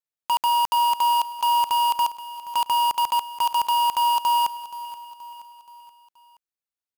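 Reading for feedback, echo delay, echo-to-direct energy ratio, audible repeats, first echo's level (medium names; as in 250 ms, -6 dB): 49%, 476 ms, -14.5 dB, 4, -15.5 dB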